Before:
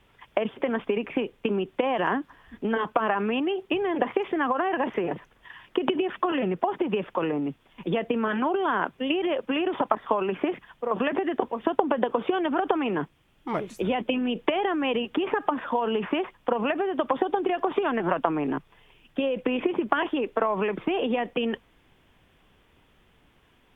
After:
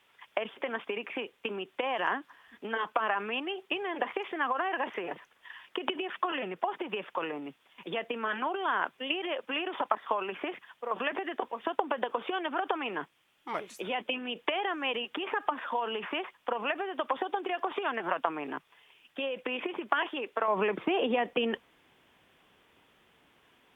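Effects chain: HPF 1200 Hz 6 dB/oct, from 20.48 s 340 Hz

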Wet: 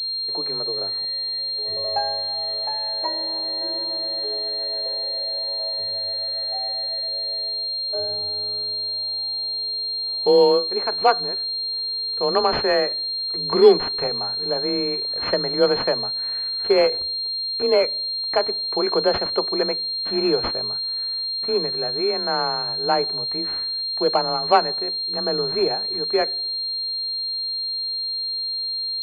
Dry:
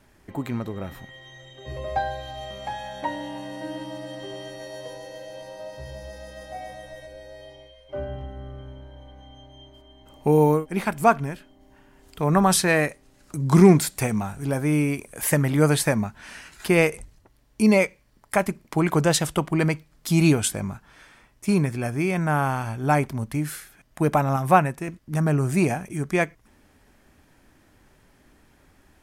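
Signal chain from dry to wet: resonant low shelf 290 Hz -10 dB, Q 3; frequency shift +28 Hz; on a send at -22 dB: reverb RT60 0.80 s, pre-delay 4 ms; on the sum: pulse-width modulation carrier 4200 Hz; gain -1 dB

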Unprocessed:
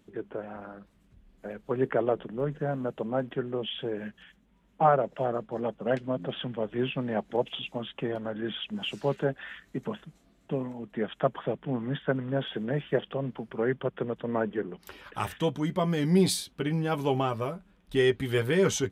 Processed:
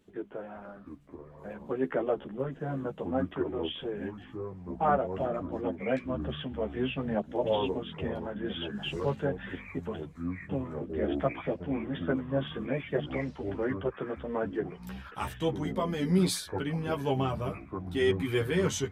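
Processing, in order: echoes that change speed 0.64 s, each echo -6 st, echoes 3, each echo -6 dB; chorus voices 4, 0.54 Hz, delay 13 ms, depth 2.3 ms

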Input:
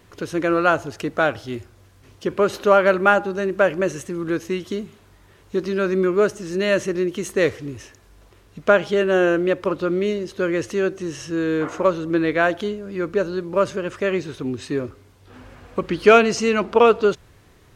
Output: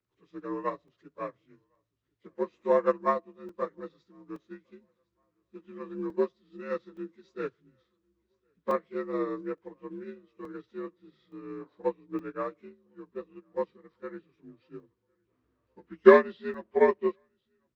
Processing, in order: inharmonic rescaling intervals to 84%; bell 810 Hz -11 dB 0.2 oct; on a send: feedback echo 1.059 s, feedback 53%, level -21.5 dB; on the sum: crackling interface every 0.87 s, samples 128, zero, from 0.88; upward expander 2.5:1, over -30 dBFS

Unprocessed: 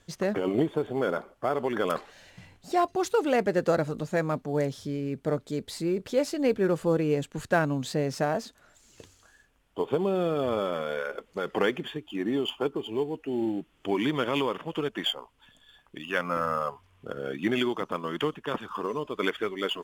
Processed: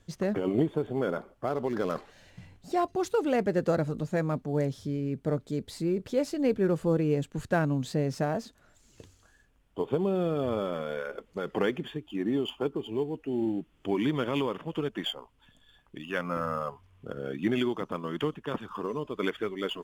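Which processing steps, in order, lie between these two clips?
1.47–1.98 median filter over 15 samples; low shelf 330 Hz +8.5 dB; gain -5 dB

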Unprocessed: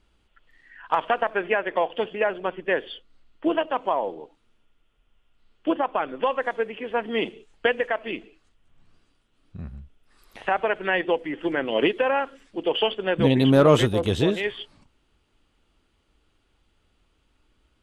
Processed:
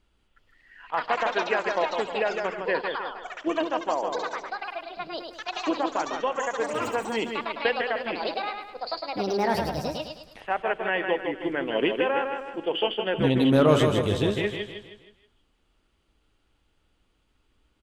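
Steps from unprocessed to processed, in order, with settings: feedback echo 0.157 s, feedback 43%, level -5.5 dB; echoes that change speed 0.359 s, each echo +7 st, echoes 2, each echo -6 dB; attack slew limiter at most 510 dB/s; gain -3.5 dB

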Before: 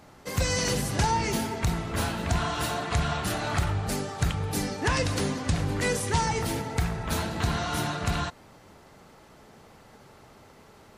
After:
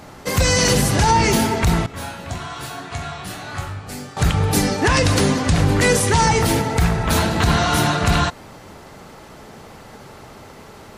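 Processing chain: 1.86–4.17 resonator bank F#2 sus4, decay 0.32 s; maximiser +17 dB; gain -5 dB

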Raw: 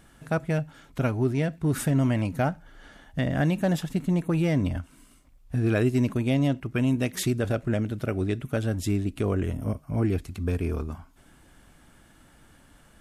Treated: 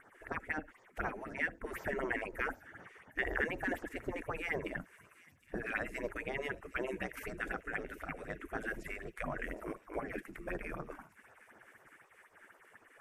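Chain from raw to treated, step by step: spectral gate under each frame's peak -15 dB weak; resonant high shelf 2700 Hz -13.5 dB, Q 3; phaser stages 4, 4 Hz, lowest notch 100–2600 Hz; dynamic EQ 1100 Hz, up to -5 dB, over -49 dBFS, Q 0.99; thin delay 0.764 s, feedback 71%, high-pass 4500 Hz, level -12 dB; gain +3.5 dB

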